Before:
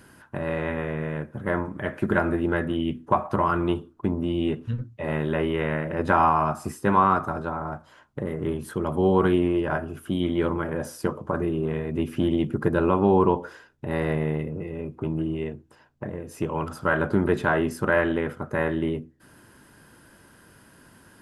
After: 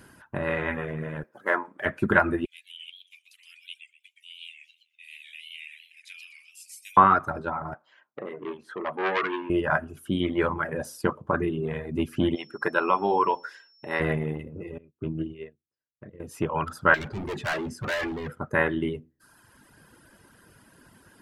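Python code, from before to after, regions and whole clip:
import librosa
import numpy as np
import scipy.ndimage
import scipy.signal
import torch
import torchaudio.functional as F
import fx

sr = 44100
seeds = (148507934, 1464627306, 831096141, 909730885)

y = fx.chain(x, sr, fx.median_filter(points=5),
    fx.highpass(hz=410.0, slope=12), at=(1.23, 1.86))
y = fx.chain(y, sr, fx.cheby1_highpass(hz=2300.0, order=6),
    fx.echo_warbled(ms=125, feedback_pct=42, rate_hz=2.8, cents=182, wet_db=-5.0), at=(2.45, 6.97))
y = fx.chain(y, sr, fx.bandpass_edges(low_hz=390.0, high_hz=3300.0),
    fx.transformer_sat(knee_hz=1800.0), at=(7.74, 9.5))
y = fx.weighting(y, sr, curve='A', at=(12.35, 13.99), fade=0.02)
y = fx.dmg_tone(y, sr, hz=5400.0, level_db=-53.0, at=(12.35, 13.99), fade=0.02)
y = fx.chain(y, sr, fx.lowpass(hz=5700.0, slope=12),
    fx.peak_eq(hz=860.0, db=-13.0, octaves=0.52),
    fx.upward_expand(threshold_db=-44.0, expansion=2.5), at=(14.78, 16.2))
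y = fx.chain(y, sr, fx.lowpass(hz=7400.0, slope=12),
    fx.peak_eq(hz=110.0, db=7.5, octaves=0.46),
    fx.overload_stage(gain_db=28.5), at=(16.94, 18.32))
y = fx.dereverb_blind(y, sr, rt60_s=1.1)
y = fx.dynamic_eq(y, sr, hz=1900.0, q=0.7, threshold_db=-40.0, ratio=4.0, max_db=7)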